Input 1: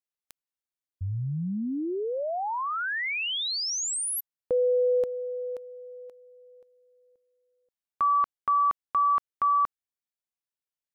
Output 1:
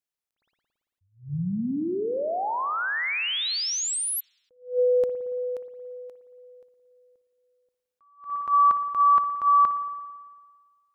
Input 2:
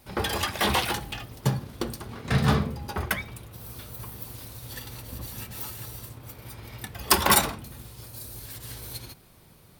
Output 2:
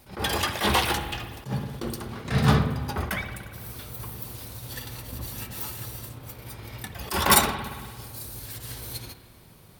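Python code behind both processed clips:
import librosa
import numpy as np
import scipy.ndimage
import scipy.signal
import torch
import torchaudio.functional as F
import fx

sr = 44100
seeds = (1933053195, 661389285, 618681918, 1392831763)

y = fx.rev_spring(x, sr, rt60_s=1.6, pass_ms=(56,), chirp_ms=45, drr_db=9.5)
y = fx.attack_slew(y, sr, db_per_s=180.0)
y = y * 10.0 ** (2.0 / 20.0)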